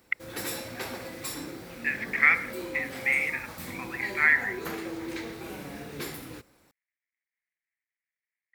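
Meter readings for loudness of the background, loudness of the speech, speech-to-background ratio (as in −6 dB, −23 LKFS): −37.5 LKFS, −26.0 LKFS, 11.5 dB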